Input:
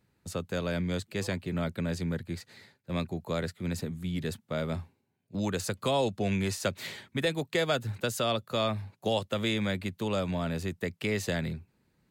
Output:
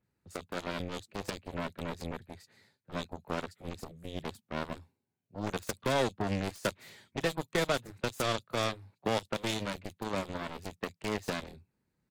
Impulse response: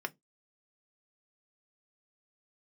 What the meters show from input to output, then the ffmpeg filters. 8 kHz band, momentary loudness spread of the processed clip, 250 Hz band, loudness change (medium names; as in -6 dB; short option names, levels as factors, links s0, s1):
-3.0 dB, 12 LU, -6.0 dB, -4.0 dB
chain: -filter_complex "[0:a]acrossover=split=3200[s0][s1];[s1]adelay=30[s2];[s0][s2]amix=inputs=2:normalize=0,aeval=exprs='0.158*(cos(1*acos(clip(val(0)/0.158,-1,1)))-cos(1*PI/2))+0.00398*(cos(5*acos(clip(val(0)/0.158,-1,1)))-cos(5*PI/2))+0.01*(cos(6*acos(clip(val(0)/0.158,-1,1)))-cos(6*PI/2))+0.0355*(cos(7*acos(clip(val(0)/0.158,-1,1)))-cos(7*PI/2))+0.00562*(cos(8*acos(clip(val(0)/0.158,-1,1)))-cos(8*PI/2))':c=same,volume=0.794"